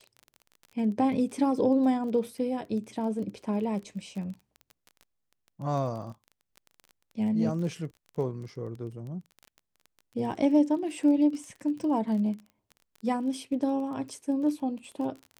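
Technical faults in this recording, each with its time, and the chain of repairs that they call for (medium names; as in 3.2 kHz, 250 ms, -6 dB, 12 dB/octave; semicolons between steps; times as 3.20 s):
crackle 21 per s -37 dBFS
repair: de-click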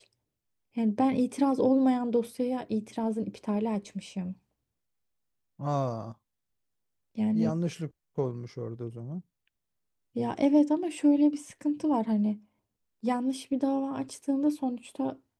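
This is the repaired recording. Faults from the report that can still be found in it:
nothing left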